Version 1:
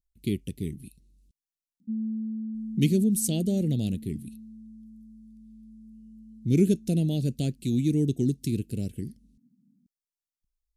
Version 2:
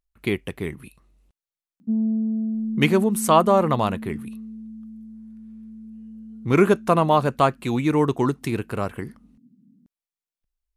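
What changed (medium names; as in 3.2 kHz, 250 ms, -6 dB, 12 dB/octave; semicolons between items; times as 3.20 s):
background +8.0 dB; master: remove Chebyshev band-stop 240–4900 Hz, order 2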